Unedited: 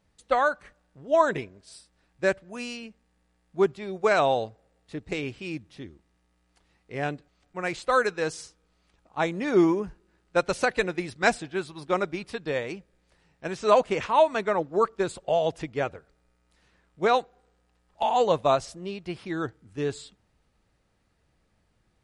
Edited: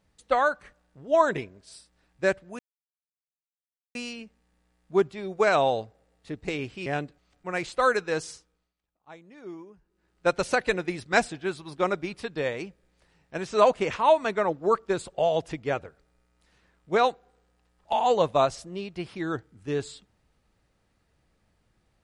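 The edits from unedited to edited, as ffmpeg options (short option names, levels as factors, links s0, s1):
-filter_complex "[0:a]asplit=5[s0][s1][s2][s3][s4];[s0]atrim=end=2.59,asetpts=PTS-STARTPTS,afade=t=out:st=2.586:d=0.004:c=hsin,apad=pad_dur=1.36[s5];[s1]atrim=start=2.59:end=5.502,asetpts=PTS-STARTPTS,afade=t=in:d=0.004:c=hsin[s6];[s2]atrim=start=6.958:end=8.84,asetpts=PTS-STARTPTS,afade=t=out:st=1.422:d=0.46:silence=0.0891251[s7];[s3]atrim=start=8.84:end=9.91,asetpts=PTS-STARTPTS,volume=0.0891[s8];[s4]atrim=start=9.91,asetpts=PTS-STARTPTS,afade=t=in:d=0.46:silence=0.0891251[s9];[s5][s6]concat=n=2:v=0:a=1[s10];[s7][s8][s9]concat=n=3:v=0:a=1[s11];[s10][s11]acrossfade=d=0.004:c1=hsin:c2=hsin"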